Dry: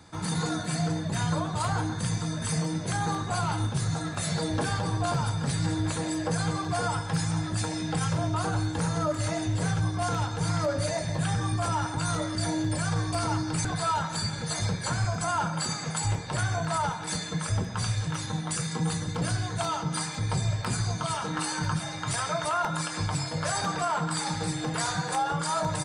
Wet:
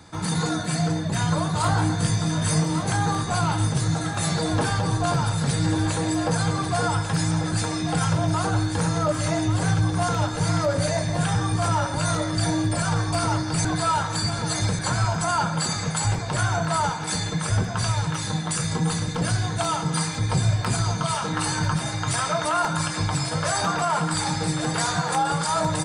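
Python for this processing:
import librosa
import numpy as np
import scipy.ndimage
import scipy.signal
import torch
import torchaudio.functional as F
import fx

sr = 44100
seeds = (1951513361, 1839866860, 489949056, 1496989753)

y = fx.doubler(x, sr, ms=20.0, db=-4.5, at=(1.61, 2.83))
y = y + 10.0 ** (-8.5 / 20.0) * np.pad(y, (int(1141 * sr / 1000.0), 0))[:len(y)]
y = y * 10.0 ** (4.5 / 20.0)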